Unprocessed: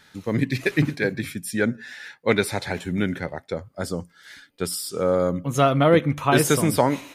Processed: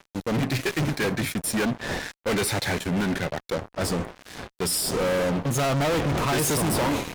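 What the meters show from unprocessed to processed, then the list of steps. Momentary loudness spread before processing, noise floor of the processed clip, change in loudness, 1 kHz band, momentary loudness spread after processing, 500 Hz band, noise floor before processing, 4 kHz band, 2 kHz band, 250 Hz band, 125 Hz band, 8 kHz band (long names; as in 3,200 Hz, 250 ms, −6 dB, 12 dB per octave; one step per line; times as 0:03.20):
13 LU, −73 dBFS, −2.5 dB, −3.0 dB, 8 LU, −4.0 dB, −59 dBFS, +2.5 dB, −1.5 dB, −2.5 dB, −2.0 dB, +2.5 dB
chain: wind on the microphone 590 Hz −37 dBFS
fuzz pedal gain 32 dB, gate −39 dBFS
level −8.5 dB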